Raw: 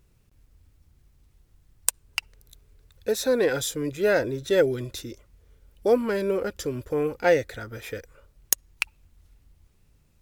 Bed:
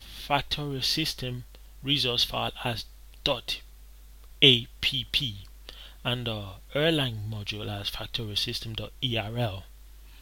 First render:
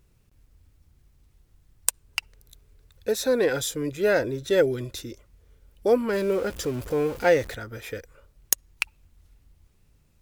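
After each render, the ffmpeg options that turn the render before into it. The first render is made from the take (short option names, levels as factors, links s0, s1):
-filter_complex "[0:a]asettb=1/sr,asplit=3[s0][s1][s2];[s0]atrim=end=6.134[s3];[s1]atrim=start=6.13:end=7.55,asetpts=PTS-STARTPTS,afade=t=in:d=0.004:c=qsin,afade=t=out:st=1.416:d=0.004:c=qsin,aeval=exprs='val(0)+0.5*0.0158*sgn(val(0))':c=same[s4];[s2]atrim=start=7.546[s5];[s3][s4]acrossfade=d=0.004:c1=hsin:c2=qsin[s6];[s6][s5]acrossfade=d=0.004:c1=qsin:c2=hsin"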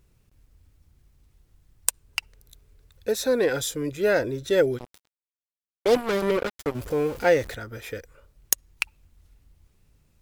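-filter_complex "[0:a]asplit=3[s0][s1][s2];[s0]afade=t=out:st=4.77:d=0.02[s3];[s1]acrusher=bits=3:mix=0:aa=0.5,afade=t=in:st=4.77:d=0.02,afade=t=out:st=6.74:d=0.02[s4];[s2]afade=t=in:st=6.74:d=0.02[s5];[s3][s4][s5]amix=inputs=3:normalize=0"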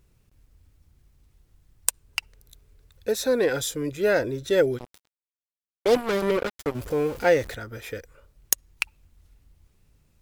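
-af anull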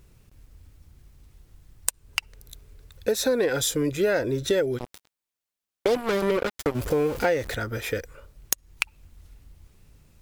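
-filter_complex "[0:a]asplit=2[s0][s1];[s1]alimiter=limit=0.211:level=0:latency=1:release=267,volume=1.26[s2];[s0][s2]amix=inputs=2:normalize=0,acompressor=threshold=0.0891:ratio=4"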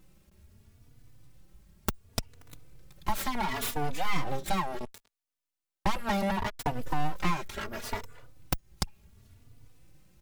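-filter_complex "[0:a]aeval=exprs='abs(val(0))':c=same,asplit=2[s0][s1];[s1]adelay=3.4,afreqshift=0.7[s2];[s0][s2]amix=inputs=2:normalize=1"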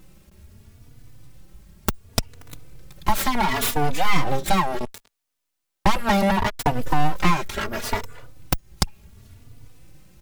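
-af "volume=2.99,alimiter=limit=0.891:level=0:latency=1"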